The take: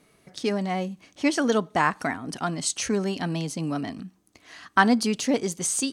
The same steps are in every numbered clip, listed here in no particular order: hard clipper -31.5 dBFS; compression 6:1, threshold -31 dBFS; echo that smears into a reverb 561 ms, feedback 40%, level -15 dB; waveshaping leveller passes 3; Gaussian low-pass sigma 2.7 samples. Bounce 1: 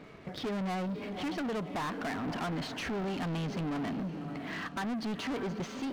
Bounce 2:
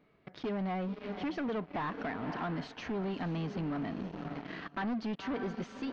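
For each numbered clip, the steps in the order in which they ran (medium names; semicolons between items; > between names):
compression > echo that smears into a reverb > hard clipper > Gaussian low-pass > waveshaping leveller; echo that smears into a reverb > waveshaping leveller > compression > hard clipper > Gaussian low-pass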